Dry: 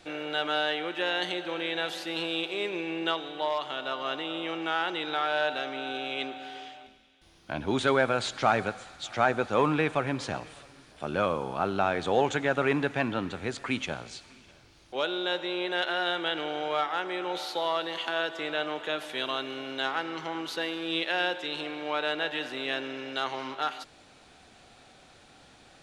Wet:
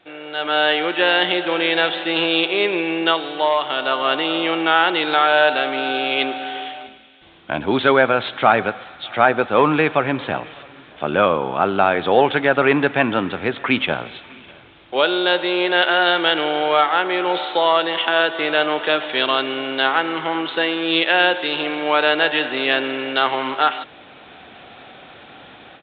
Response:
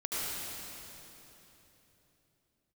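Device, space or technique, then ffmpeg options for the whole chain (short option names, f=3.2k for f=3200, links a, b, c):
Bluetooth headset: -af "highpass=f=200:p=1,dynaudnorm=f=330:g=3:m=15dB,aresample=8000,aresample=44100" -ar 16000 -c:a sbc -b:a 64k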